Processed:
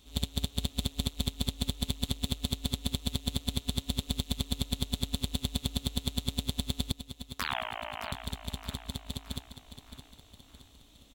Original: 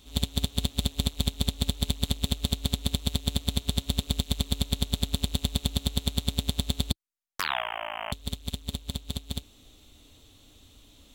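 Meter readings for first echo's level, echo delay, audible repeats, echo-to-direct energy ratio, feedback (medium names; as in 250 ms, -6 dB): -11.0 dB, 618 ms, 4, -10.0 dB, 49%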